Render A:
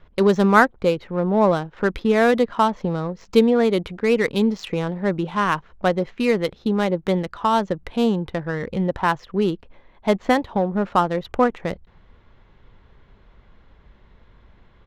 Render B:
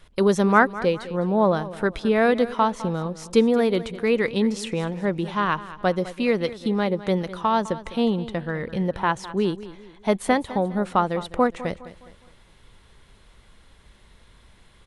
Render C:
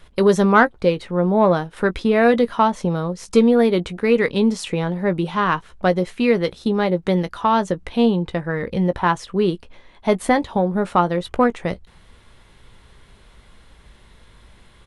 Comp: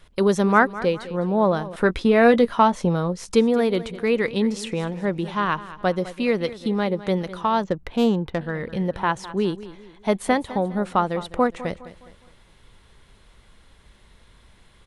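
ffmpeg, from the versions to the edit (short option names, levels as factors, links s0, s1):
-filter_complex "[1:a]asplit=3[s0][s1][s2];[s0]atrim=end=1.762[s3];[2:a]atrim=start=1.758:end=3.352[s4];[s1]atrim=start=3.348:end=7.642[s5];[0:a]atrim=start=7.638:end=8.412[s6];[s2]atrim=start=8.408[s7];[s3][s4]acrossfade=d=0.004:c1=hsin:c2=hsin[s8];[s8][s5]acrossfade=d=0.004:c1=hsin:c2=hsin[s9];[s9][s6]acrossfade=d=0.004:c1=hsin:c2=hsin[s10];[s10][s7]acrossfade=d=0.004:c1=hsin:c2=hsin"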